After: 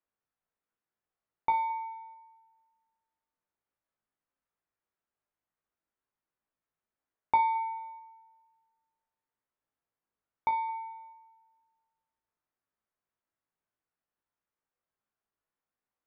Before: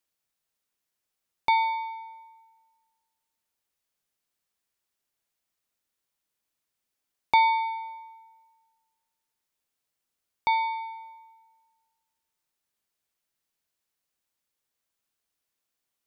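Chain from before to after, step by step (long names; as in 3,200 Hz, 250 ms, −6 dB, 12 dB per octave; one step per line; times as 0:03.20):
Chebyshev low-pass filter 1,400 Hz, order 2
tuned comb filter 54 Hz, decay 0.27 s, harmonics all, mix 90%
feedback echo with a high-pass in the loop 219 ms, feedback 25%, high-pass 410 Hz, level −20 dB
level +4.5 dB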